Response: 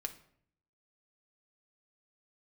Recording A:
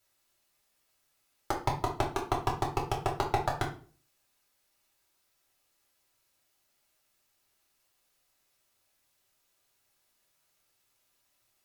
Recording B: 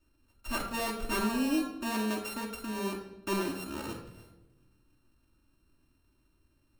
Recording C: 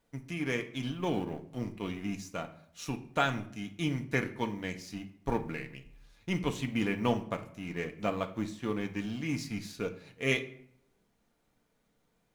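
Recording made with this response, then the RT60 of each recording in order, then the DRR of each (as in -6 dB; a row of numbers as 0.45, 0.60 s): C; 0.40, 1.0, 0.65 s; -2.0, -2.5, 5.0 dB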